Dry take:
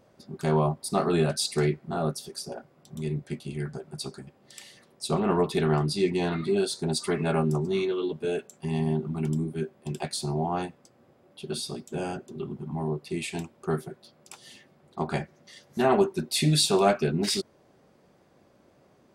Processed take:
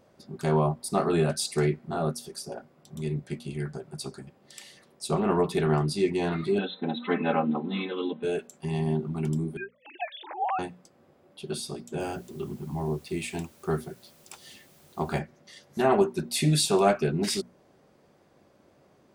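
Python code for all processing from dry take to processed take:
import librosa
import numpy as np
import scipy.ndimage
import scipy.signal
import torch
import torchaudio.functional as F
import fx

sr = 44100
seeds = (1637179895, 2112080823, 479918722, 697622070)

y = fx.chain(x, sr, fx.brickwall_bandpass(low_hz=160.0, high_hz=4100.0),
    fx.comb(ms=3.9, depth=0.98), at=(6.58, 8.23))
y = fx.chain(y, sr, fx.sine_speech(),
    fx.highpass(hz=600.0, slope=24),
    fx.high_shelf(hz=2100.0, db=10.5), at=(9.57, 10.59))
y = fx.chain(y, sr, fx.peak_eq(hz=77.0, db=9.5, octaves=0.3),
    fx.quant_dither(seeds[0], bits=10, dither='triangular'), at=(12.0, 15.19))
y = fx.hum_notches(y, sr, base_hz=60, count=4)
y = fx.dynamic_eq(y, sr, hz=4100.0, q=1.5, threshold_db=-44.0, ratio=4.0, max_db=-4)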